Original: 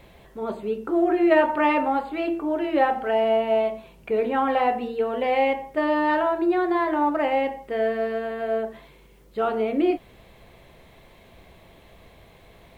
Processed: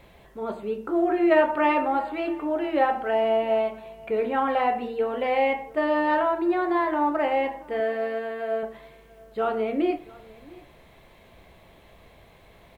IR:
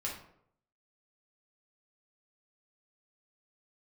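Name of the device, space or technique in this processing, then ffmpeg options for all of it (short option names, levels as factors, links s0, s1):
filtered reverb send: -filter_complex "[0:a]asplit=2[s0][s1];[s1]highpass=440,lowpass=3000[s2];[1:a]atrim=start_sample=2205[s3];[s2][s3]afir=irnorm=-1:irlink=0,volume=0.299[s4];[s0][s4]amix=inputs=2:normalize=0,asettb=1/sr,asplit=3[s5][s6][s7];[s5]atrim=end=7.804[s8];[s6]atrim=start=7.8:end=8.63,asetpts=PTS-STARTPTS,afade=t=in:d=0.004:c=qsin,afade=t=out:st=0.826:d=0.004:c=qsin,highpass=f=230:p=1[s9];[s7]atrim=start=8.626[s10];[s8][s9]acrossfade=d=0.004:c1=hsin:c2=qsin[s11];[s11][s10]acrossfade=d=0.004:c1=qsin:c2=hsin,aecho=1:1:684:0.0708,volume=0.75"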